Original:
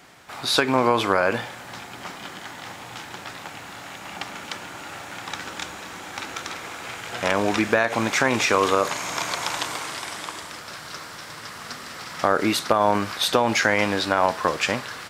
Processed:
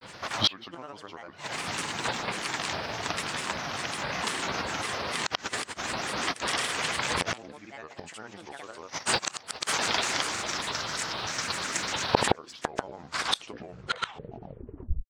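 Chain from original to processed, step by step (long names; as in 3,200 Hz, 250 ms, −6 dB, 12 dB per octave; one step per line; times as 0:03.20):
turntable brake at the end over 2.55 s
high shelf with overshoot 7,800 Hz −8 dB, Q 3
gate with flip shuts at −13 dBFS, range −28 dB
granular cloud, pitch spread up and down by 7 semitones
level +5.5 dB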